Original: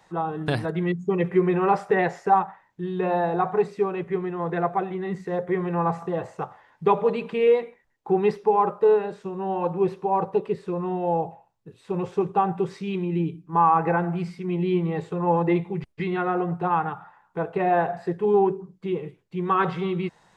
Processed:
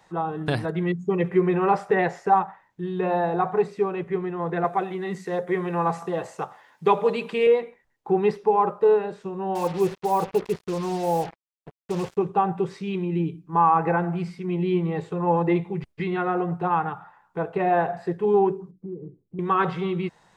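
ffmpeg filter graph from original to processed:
-filter_complex "[0:a]asettb=1/sr,asplit=3[s0][s1][s2];[s0]atrim=end=4.644[s3];[s1]atrim=start=4.64:end=7.47,asetpts=PTS-STARTPTS,afade=t=in:d=0.004:c=qsin,afade=t=out:st=2.826:d=0.004:c=qsin,highpass=160,highshelf=f=3400:g=11.5[s4];[s2]atrim=start=7.466[s5];[s3][s4]acrossfade=d=0.004:c1=hsin:c2=qsin[s6];[s6][s5]acrossfade=d=0.004:c1=qsin:c2=hsin,asettb=1/sr,asplit=3[s7][s8][s9];[s7]atrim=end=9.554[s10];[s8]atrim=start=9.55:end=12.17,asetpts=PTS-STARTPTS,afade=t=in:d=0.004:c=qsin,afade=t=out:st=2.616:d=0.004:c=qsin,equalizer=f=2700:w=0.74:g=2.5,acrusher=bits=5:mix=0:aa=0.5[s11];[s9]atrim=start=12.166[s12];[s10][s11]acrossfade=d=0.004:c1=hsin:c2=qsin[s13];[s13][s12]acrossfade=d=0.004:c1=qsin:c2=hsin,asettb=1/sr,asplit=3[s14][s15][s16];[s14]atrim=end=18.714[s17];[s15]atrim=start=18.71:end=19.39,asetpts=PTS-STARTPTS,afade=t=in:d=0.004:c=qsin,afade=t=out:st=0.676:d=0.004:c=qsin,lowpass=f=300:t=q:w=1.6,acompressor=threshold=0.0178:ratio=2.5:attack=3.2:release=140:knee=1:detection=peak[s18];[s16]atrim=start=19.386[s19];[s17][s18]acrossfade=d=0.004:c1=hsin:c2=qsin[s20];[s20][s19]acrossfade=d=0.004:c1=qsin:c2=hsin"

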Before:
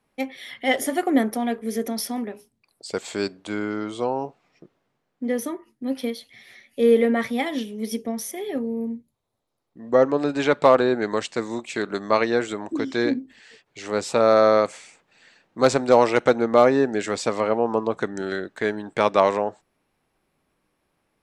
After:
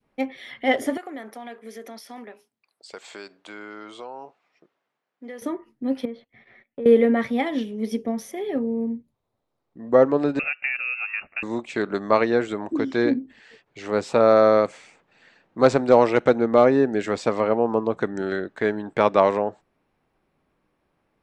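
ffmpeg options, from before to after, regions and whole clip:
-filter_complex "[0:a]asettb=1/sr,asplit=3[s0][s1][s2];[s0]atrim=end=0.974[s3];[s1]atrim=start=0.97:end=5.42,asetpts=PTS-STARTPTS,afade=t=in:d=0.004:c=qsin,afade=t=out:st=4.446:d=0.004:c=qsin,highpass=f=1300:p=1,acompressor=threshold=0.0178:ratio=3:attack=3.2:release=140:knee=1:detection=peak[s4];[s2]atrim=start=5.416[s5];[s3][s4]acrossfade=d=0.004:c1=hsin:c2=qsin[s6];[s6][s5]acrossfade=d=0.004:c1=qsin:c2=hsin,asettb=1/sr,asplit=3[s7][s8][s9];[s7]atrim=end=6.054[s10];[s8]atrim=start=6.05:end=6.86,asetpts=PTS-STARTPTS,afade=t=in:d=0.004:c=qsin,afade=t=out:st=0.806:d=0.004:c=qsin,lowpass=1800,agate=range=0.126:threshold=0.00158:ratio=16:release=100:detection=peak,acompressor=threshold=0.0282:ratio=4:attack=3.2:release=140:knee=1:detection=peak[s11];[s9]atrim=start=6.856[s12];[s10][s11]acrossfade=d=0.004:c1=hsin:c2=qsin[s13];[s13][s12]acrossfade=d=0.004:c1=qsin:c2=hsin,asettb=1/sr,asplit=3[s14][s15][s16];[s14]atrim=end=10.394[s17];[s15]atrim=start=10.39:end=11.43,asetpts=PTS-STARTPTS,afade=t=in:d=0.004:c=qsin,afade=t=out:st=1.036:d=0.004:c=qsin,equalizer=f=1900:w=7.6:g=-14,acrossover=split=270|1900[s18][s19][s20];[s18]acompressor=threshold=0.0355:ratio=4[s21];[s19]acompressor=threshold=0.0447:ratio=4[s22];[s20]acompressor=threshold=0.00398:ratio=4[s23];[s21][s22][s23]amix=inputs=3:normalize=0,lowpass=f=2500:t=q:w=0.5098,lowpass=f=2500:t=q:w=0.6013,lowpass=f=2500:t=q:w=0.9,lowpass=f=2500:t=q:w=2.563,afreqshift=-2900[s24];[s16]atrim=start=11.426[s25];[s17][s24]acrossfade=d=0.004:c1=hsin:c2=qsin[s26];[s26][s25]acrossfade=d=0.004:c1=qsin:c2=hsin,lowpass=f=2100:p=1,adynamicequalizer=threshold=0.0355:dfrequency=990:dqfactor=0.73:tfrequency=990:tqfactor=0.73:attack=5:release=100:ratio=0.375:range=2:mode=cutabove:tftype=bell,volume=1.26"

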